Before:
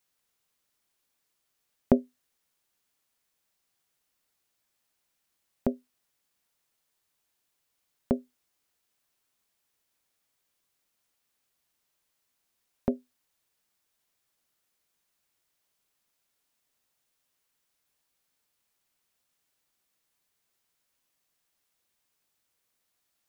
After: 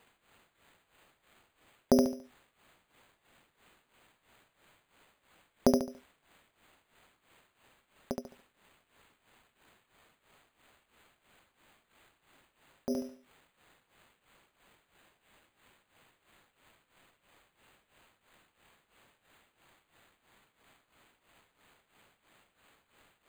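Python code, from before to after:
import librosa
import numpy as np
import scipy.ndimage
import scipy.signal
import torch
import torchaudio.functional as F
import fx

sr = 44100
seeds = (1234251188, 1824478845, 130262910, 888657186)

p1 = fx.low_shelf(x, sr, hz=320.0, db=-10.5)
p2 = fx.over_compress(p1, sr, threshold_db=-35.0, ratio=-1.0)
p3 = p1 + F.gain(torch.from_numpy(p2), -2.0).numpy()
p4 = p3 * (1.0 - 0.98 / 2.0 + 0.98 / 2.0 * np.cos(2.0 * np.pi * 3.0 * (np.arange(len(p3)) / sr)))
p5 = p4 + fx.echo_feedback(p4, sr, ms=71, feedback_pct=34, wet_db=-3.5, dry=0)
p6 = np.repeat(p5[::8], 8)[:len(p5)]
y = F.gain(torch.from_numpy(p6), 5.5).numpy()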